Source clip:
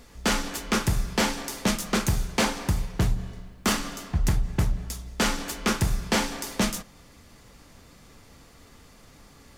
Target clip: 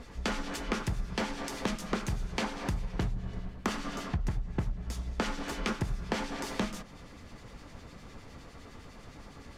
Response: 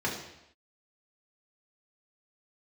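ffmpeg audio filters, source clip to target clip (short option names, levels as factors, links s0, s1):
-filter_complex "[0:a]acrossover=split=1900[s0][s1];[s0]aeval=exprs='val(0)*(1-0.5/2+0.5/2*cos(2*PI*9.8*n/s))':c=same[s2];[s1]aeval=exprs='val(0)*(1-0.5/2-0.5/2*cos(2*PI*9.8*n/s))':c=same[s3];[s2][s3]amix=inputs=2:normalize=0,acompressor=threshold=0.0178:ratio=6,aemphasis=mode=reproduction:type=50fm,volume=1.88"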